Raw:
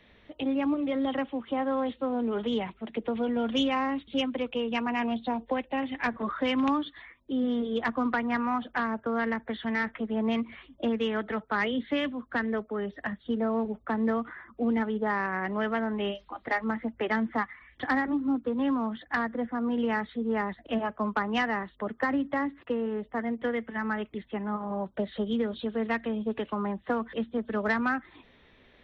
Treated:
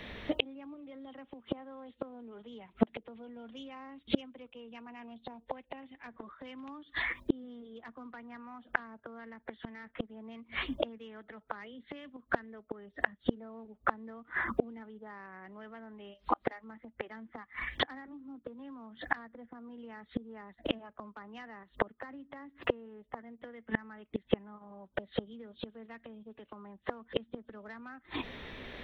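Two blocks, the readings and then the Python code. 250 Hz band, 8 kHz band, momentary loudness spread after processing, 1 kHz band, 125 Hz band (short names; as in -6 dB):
-12.5 dB, n/a, 15 LU, -10.0 dB, -6.0 dB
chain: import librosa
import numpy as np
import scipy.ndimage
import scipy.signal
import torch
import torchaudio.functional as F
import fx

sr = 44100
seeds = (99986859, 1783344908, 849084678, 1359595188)

p1 = fx.level_steps(x, sr, step_db=18)
p2 = x + (p1 * 10.0 ** (0.0 / 20.0))
p3 = fx.gate_flip(p2, sr, shuts_db=-24.0, range_db=-34)
y = p3 * 10.0 ** (11.5 / 20.0)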